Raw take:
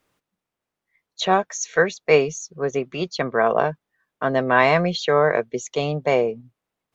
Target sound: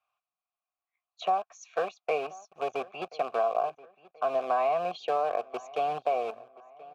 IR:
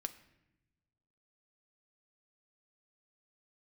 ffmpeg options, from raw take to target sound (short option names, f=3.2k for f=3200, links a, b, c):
-filter_complex "[0:a]equalizer=f=2.5k:w=0.66:g=-3,acrossover=split=120|820[a][b][c];[b]acrusher=bits=5:dc=4:mix=0:aa=0.000001[d];[a][d][c]amix=inputs=3:normalize=0,asplit=3[e][f][g];[e]bandpass=f=730:t=q:w=8,volume=0dB[h];[f]bandpass=f=1.09k:t=q:w=8,volume=-6dB[i];[g]bandpass=f=2.44k:t=q:w=8,volume=-9dB[j];[h][i][j]amix=inputs=3:normalize=0,acompressor=threshold=-31dB:ratio=4,asplit=2[k][l];[l]adelay=1030,lowpass=f=3k:p=1,volume=-20dB,asplit=2[m][n];[n]adelay=1030,lowpass=f=3k:p=1,volume=0.46,asplit=2[o][p];[p]adelay=1030,lowpass=f=3k:p=1,volume=0.46[q];[k][m][o][q]amix=inputs=4:normalize=0,volume=6dB"